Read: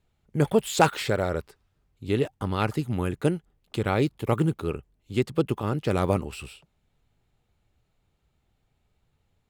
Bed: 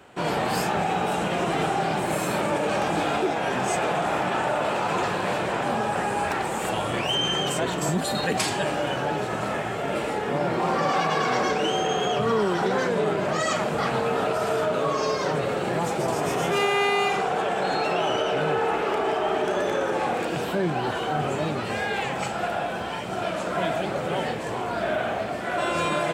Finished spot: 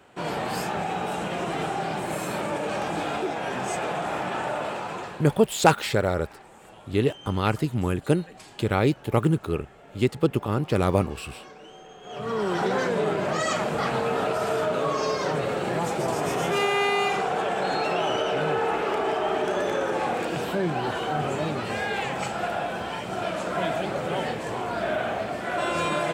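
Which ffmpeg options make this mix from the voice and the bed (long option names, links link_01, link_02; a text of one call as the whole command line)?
ffmpeg -i stem1.wav -i stem2.wav -filter_complex "[0:a]adelay=4850,volume=2dB[link_01];[1:a]volume=17dB,afade=type=out:start_time=4.56:duration=0.82:silence=0.125893,afade=type=in:start_time=12.03:duration=0.55:silence=0.0891251[link_02];[link_01][link_02]amix=inputs=2:normalize=0" out.wav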